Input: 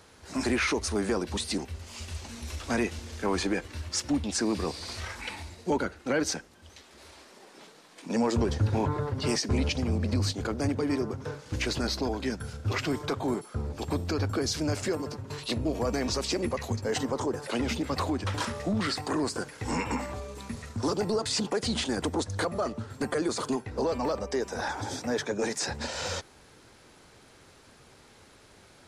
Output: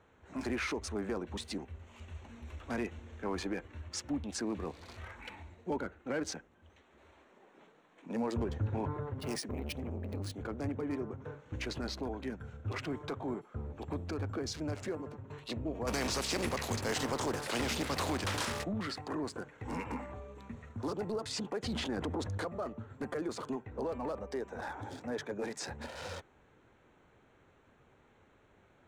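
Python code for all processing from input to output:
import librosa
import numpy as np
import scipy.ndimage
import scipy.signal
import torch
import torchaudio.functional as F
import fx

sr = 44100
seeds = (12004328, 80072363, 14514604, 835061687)

y = fx.chain(x, sr, fx.resample_bad(factor=3, down='none', up='hold'),
    fx.transformer_sat(knee_hz=320.0), at=(9.18, 10.41))
y = fx.spec_flatten(y, sr, power=0.58, at=(15.86, 18.63), fade=0.02)
y = fx.quant_companded(y, sr, bits=6, at=(15.86, 18.63), fade=0.02)
y = fx.env_flatten(y, sr, amount_pct=50, at=(15.86, 18.63), fade=0.02)
y = fx.chain(y, sr, fx.lowpass(hz=3800.0, slope=6),
    fx.env_flatten(amount_pct=70), at=(21.64, 22.38))
y = fx.wiener(y, sr, points=9)
y = fx.high_shelf(y, sr, hz=10000.0, db=-3.5)
y = y * librosa.db_to_amplitude(-8.0)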